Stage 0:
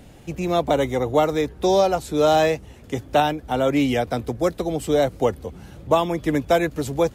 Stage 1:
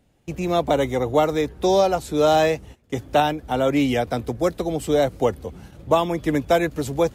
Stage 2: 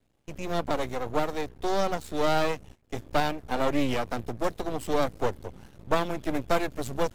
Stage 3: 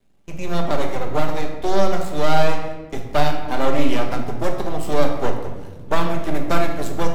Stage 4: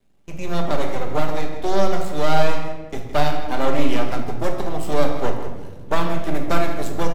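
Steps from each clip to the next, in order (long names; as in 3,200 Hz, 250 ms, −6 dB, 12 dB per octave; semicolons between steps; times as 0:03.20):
noise gate −40 dBFS, range −17 dB
half-wave rectification; speech leveller 2 s; level −4 dB
rectangular room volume 710 cubic metres, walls mixed, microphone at 1.2 metres; level +3.5 dB
single-tap delay 162 ms −14 dB; level −1 dB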